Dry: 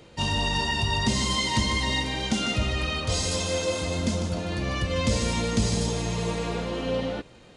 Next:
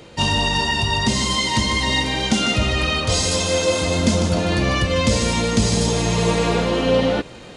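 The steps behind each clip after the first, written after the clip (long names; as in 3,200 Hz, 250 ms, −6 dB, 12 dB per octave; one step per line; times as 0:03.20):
low-shelf EQ 110 Hz −4 dB
speech leveller within 5 dB 0.5 s
level +8 dB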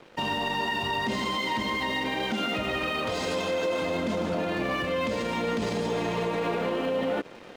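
three-way crossover with the lows and the highs turned down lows −19 dB, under 190 Hz, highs −19 dB, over 3,000 Hz
brickwall limiter −19.5 dBFS, peak gain reduction 11 dB
dead-zone distortion −46 dBFS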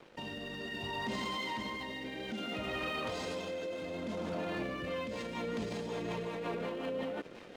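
brickwall limiter −26 dBFS, peak gain reduction 6 dB
rotating-speaker cabinet horn 0.6 Hz, later 5.5 Hz, at 0:04.39
level −2 dB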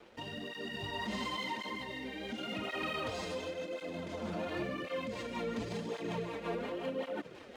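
through-zero flanger with one copy inverted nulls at 0.92 Hz, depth 8 ms
level +2.5 dB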